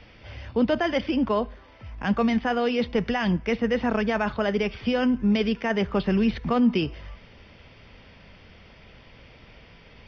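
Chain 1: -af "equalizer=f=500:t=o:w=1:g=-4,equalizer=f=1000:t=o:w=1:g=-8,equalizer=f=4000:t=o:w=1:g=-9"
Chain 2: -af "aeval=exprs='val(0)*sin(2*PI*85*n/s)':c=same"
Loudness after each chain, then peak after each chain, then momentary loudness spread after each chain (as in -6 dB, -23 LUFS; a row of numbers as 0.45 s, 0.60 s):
-27.0 LUFS, -28.0 LUFS; -14.0 dBFS, -12.5 dBFS; 10 LU, 8 LU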